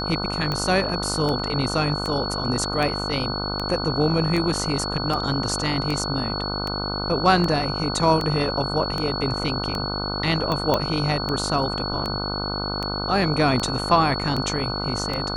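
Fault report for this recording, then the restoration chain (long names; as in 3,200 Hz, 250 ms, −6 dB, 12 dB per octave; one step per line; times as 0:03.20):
mains buzz 50 Hz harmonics 30 −29 dBFS
scratch tick 78 rpm −13 dBFS
whistle 4,400 Hz −29 dBFS
0:10.74: click −7 dBFS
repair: click removal
hum removal 50 Hz, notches 30
notch filter 4,400 Hz, Q 30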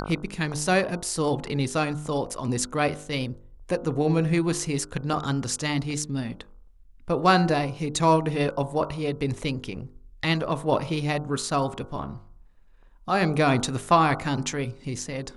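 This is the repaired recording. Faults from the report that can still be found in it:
none of them is left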